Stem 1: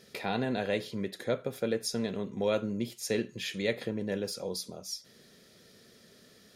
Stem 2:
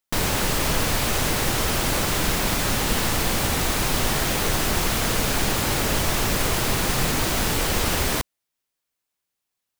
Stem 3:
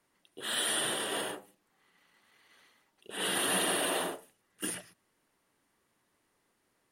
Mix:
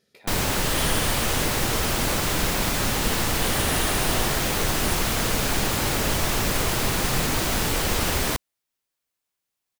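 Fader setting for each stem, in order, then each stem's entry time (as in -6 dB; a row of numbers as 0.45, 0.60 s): -12.5, -1.0, 0.0 dB; 0.00, 0.15, 0.20 s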